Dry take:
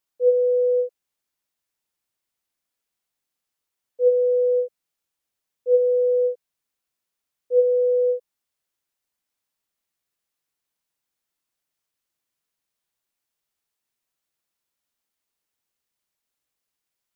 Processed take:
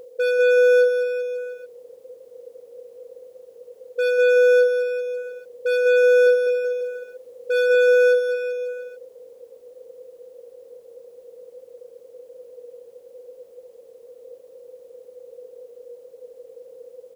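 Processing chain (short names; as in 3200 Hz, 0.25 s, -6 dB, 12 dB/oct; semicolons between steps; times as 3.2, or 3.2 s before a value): per-bin compression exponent 0.4; reverb removal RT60 0.83 s; in parallel at -0.5 dB: compressor, threshold -36 dBFS, peak gain reduction 20.5 dB; on the sum: hard clip -23.5 dBFS, distortion -8 dB; 6.22–7.75 doubler 45 ms -4 dB; on a send: bouncing-ball echo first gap 0.2 s, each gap 0.9×, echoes 5; on the sum: gain +4.5 dB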